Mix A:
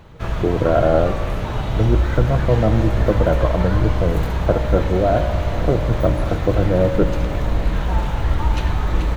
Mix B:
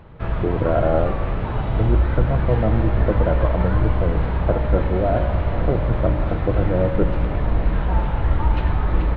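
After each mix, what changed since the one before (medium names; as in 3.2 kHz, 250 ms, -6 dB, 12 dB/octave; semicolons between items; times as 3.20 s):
speech -3.5 dB; master: add Gaussian low-pass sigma 2.8 samples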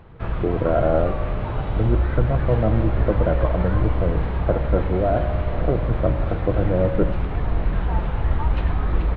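background: send off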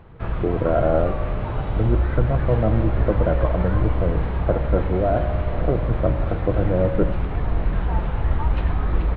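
background: add distance through air 56 m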